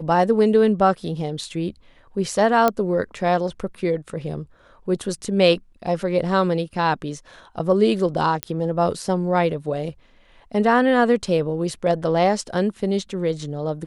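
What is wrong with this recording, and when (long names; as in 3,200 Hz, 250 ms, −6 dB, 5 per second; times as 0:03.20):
0:02.68: click −5 dBFS
0:08.43: click −7 dBFS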